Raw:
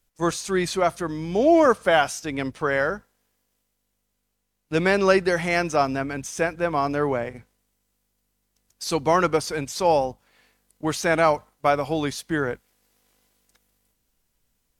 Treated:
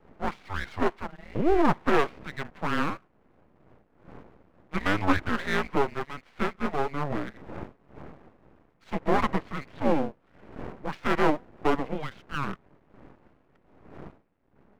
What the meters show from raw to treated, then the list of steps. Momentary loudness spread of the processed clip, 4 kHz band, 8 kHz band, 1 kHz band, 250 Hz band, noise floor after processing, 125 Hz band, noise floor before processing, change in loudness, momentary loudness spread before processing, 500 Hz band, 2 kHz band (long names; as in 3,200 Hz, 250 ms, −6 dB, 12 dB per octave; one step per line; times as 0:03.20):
17 LU, −7.5 dB, −18.0 dB, −5.0 dB, −3.5 dB, −65 dBFS, −3.5 dB, −75 dBFS, −6.0 dB, 11 LU, −8.5 dB, −6.0 dB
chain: wind on the microphone 230 Hz −33 dBFS
single-sideband voice off tune −290 Hz 470–2,700 Hz
half-wave rectification
level +1 dB